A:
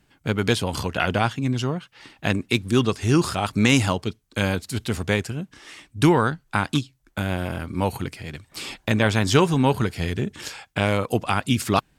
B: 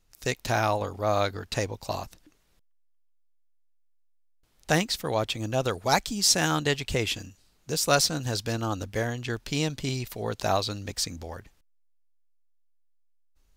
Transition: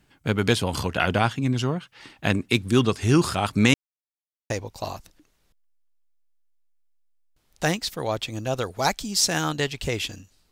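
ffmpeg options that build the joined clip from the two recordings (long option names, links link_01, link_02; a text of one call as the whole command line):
ffmpeg -i cue0.wav -i cue1.wav -filter_complex "[0:a]apad=whole_dur=10.51,atrim=end=10.51,asplit=2[link_01][link_02];[link_01]atrim=end=3.74,asetpts=PTS-STARTPTS,afade=type=out:start_time=3.736:duration=0.004:curve=hsin[link_03];[link_02]atrim=start=3.74:end=4.5,asetpts=PTS-STARTPTS,volume=0[link_04];[1:a]atrim=start=1.57:end=7.58,asetpts=PTS-STARTPTS,afade=type=in:duration=0.004:curve=hsin[link_05];[link_03][link_04][link_05]concat=n=3:v=0:a=1" out.wav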